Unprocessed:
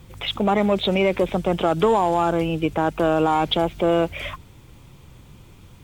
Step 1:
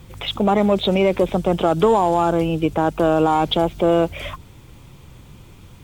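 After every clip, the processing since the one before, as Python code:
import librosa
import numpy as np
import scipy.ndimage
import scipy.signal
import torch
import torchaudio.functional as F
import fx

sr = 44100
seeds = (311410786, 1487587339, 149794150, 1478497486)

y = fx.dynamic_eq(x, sr, hz=2100.0, q=1.1, threshold_db=-40.0, ratio=4.0, max_db=-5)
y = F.gain(torch.from_numpy(y), 3.0).numpy()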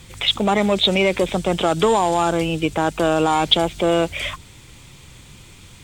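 y = fx.graphic_eq_10(x, sr, hz=(2000, 4000, 8000), db=(7, 7, 12))
y = F.gain(torch.from_numpy(y), -2.0).numpy()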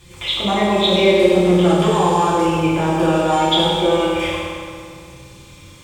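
y = fx.rev_fdn(x, sr, rt60_s=2.3, lf_ratio=1.0, hf_ratio=0.7, size_ms=17.0, drr_db=-9.0)
y = F.gain(torch.from_numpy(y), -7.5).numpy()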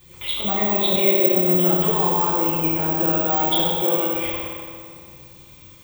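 y = (np.kron(x[::2], np.eye(2)[0]) * 2)[:len(x)]
y = F.gain(torch.from_numpy(y), -7.0).numpy()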